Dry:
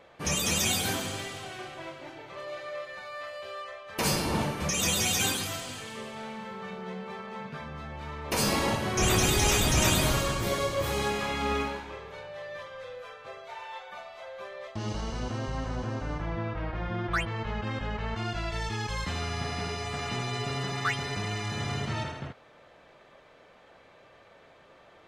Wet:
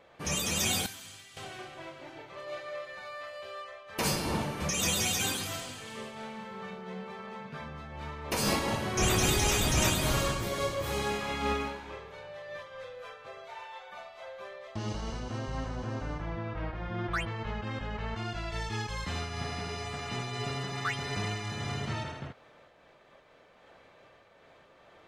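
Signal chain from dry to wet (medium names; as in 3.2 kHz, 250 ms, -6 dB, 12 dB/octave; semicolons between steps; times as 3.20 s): 0.86–1.37 s: amplifier tone stack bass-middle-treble 5-5-5; random flutter of the level, depth 50%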